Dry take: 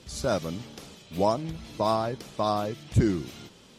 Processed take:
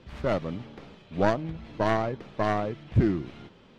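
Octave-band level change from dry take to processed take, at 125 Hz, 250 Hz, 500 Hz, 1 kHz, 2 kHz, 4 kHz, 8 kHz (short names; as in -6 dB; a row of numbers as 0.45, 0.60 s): +0.5 dB, +0.5 dB, 0.0 dB, -1.5 dB, +6.5 dB, -6.0 dB, under -10 dB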